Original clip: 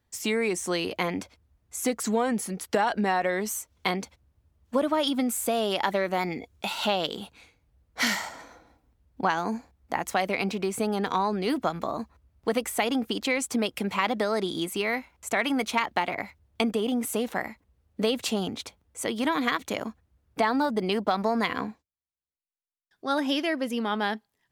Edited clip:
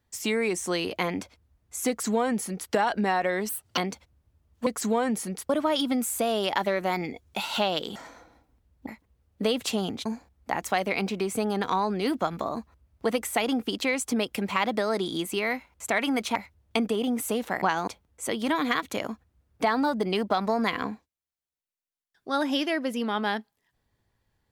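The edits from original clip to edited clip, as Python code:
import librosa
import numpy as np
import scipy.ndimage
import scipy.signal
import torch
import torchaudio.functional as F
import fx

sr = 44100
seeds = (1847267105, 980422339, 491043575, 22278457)

y = fx.edit(x, sr, fx.duplicate(start_s=1.89, length_s=0.83, to_s=4.77),
    fx.speed_span(start_s=3.49, length_s=0.39, speed=1.37),
    fx.cut(start_s=7.23, length_s=1.07),
    fx.swap(start_s=9.22, length_s=0.26, other_s=17.46, other_length_s=1.18),
    fx.cut(start_s=15.78, length_s=0.42), tone=tone)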